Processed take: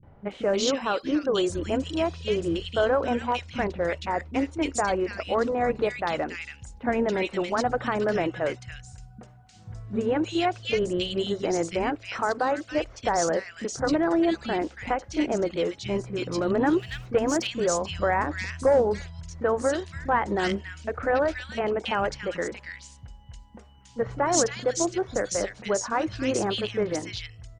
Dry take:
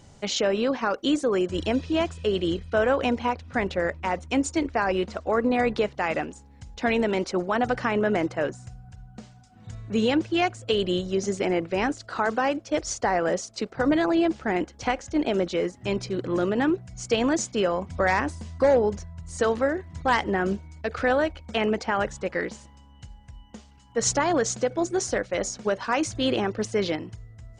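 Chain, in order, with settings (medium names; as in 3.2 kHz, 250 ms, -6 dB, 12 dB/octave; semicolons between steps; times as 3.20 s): 16.48–17.16 s: waveshaping leveller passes 1; three bands offset in time lows, mids, highs 30/310 ms, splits 240/2000 Hz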